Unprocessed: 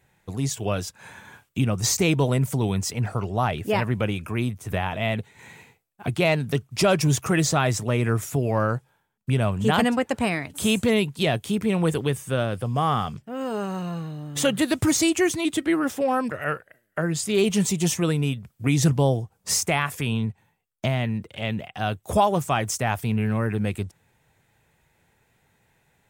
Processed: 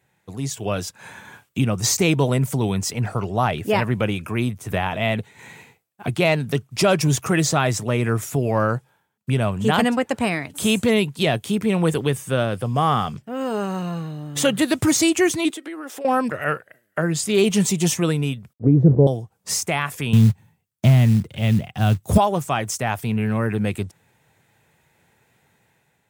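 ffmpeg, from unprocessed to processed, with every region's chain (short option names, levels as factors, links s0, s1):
-filter_complex "[0:a]asettb=1/sr,asplit=3[s0][s1][s2];[s0]atrim=end=15.504[s3];[s1]atrim=start=15.5:end=16.05,asetpts=PTS-STARTPTS,afade=t=in:d=0.004:c=qsin,afade=t=out:st=0.546:d=0.004:c=qsin,highpass=f=300:w=0.5412,highpass=f=300:w=1.3066,acompressor=threshold=0.0158:ratio=4:attack=3.2:release=140:knee=1:detection=peak[s4];[s2]atrim=start=16.046[s5];[s3][s4]acrossfade=d=0.004:c1=hsin:c2=qsin[s6];[s6][s5]acrossfade=d=0.004:c1=qsin:c2=hsin,asettb=1/sr,asplit=3[s7][s8][s9];[s7]atrim=end=18.534[s10];[s8]atrim=start=18.53:end=19.07,asetpts=PTS-STARTPTS,afade=t=in:d=0.004:c=qsin,afade=t=out:st=0.536:d=0.004:c=qsin,acrusher=bits=6:dc=4:mix=0:aa=0.000001,lowpass=f=460:t=q:w=2.7,lowshelf=f=210:g=10[s11];[s9]atrim=start=19.066[s12];[s10][s11]acrossfade=d=0.004:c1=hsin:c2=qsin[s13];[s13][s12]acrossfade=d=0.004:c1=qsin:c2=hsin,asettb=1/sr,asplit=3[s14][s15][s16];[s14]atrim=end=20.134[s17];[s15]atrim=start=20.13:end=22.18,asetpts=PTS-STARTPTS,afade=t=in:d=0.004:c=qsin,afade=t=out:st=2.046:d=0.004:c=qsin,bass=f=250:g=15,treble=f=4000:g=4,acrusher=bits=7:mode=log:mix=0:aa=0.000001[s18];[s16]atrim=start=22.176[s19];[s17][s18]acrossfade=d=0.004:c1=hsin:c2=qsin[s20];[s20][s19]acrossfade=d=0.004:c1=qsin:c2=hsin,highpass=93,dynaudnorm=f=270:g=5:m=2,volume=0.794"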